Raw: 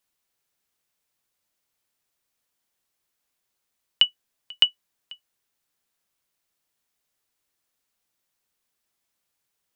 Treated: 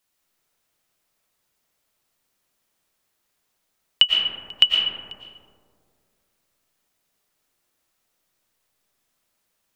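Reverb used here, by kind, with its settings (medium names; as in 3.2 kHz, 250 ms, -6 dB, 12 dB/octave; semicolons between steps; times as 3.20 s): algorithmic reverb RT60 2.1 s, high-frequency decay 0.25×, pre-delay 75 ms, DRR -2 dB; trim +3 dB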